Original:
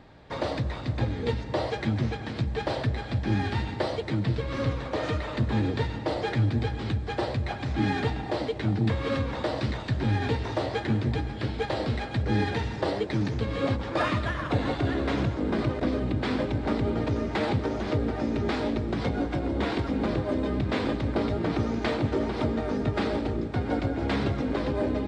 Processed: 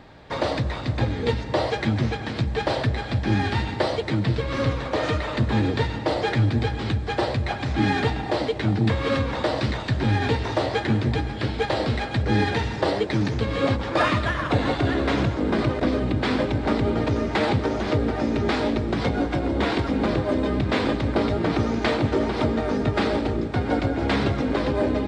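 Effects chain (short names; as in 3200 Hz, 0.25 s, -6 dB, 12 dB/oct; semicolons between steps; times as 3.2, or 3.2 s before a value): low shelf 480 Hz -3 dB; gain +6.5 dB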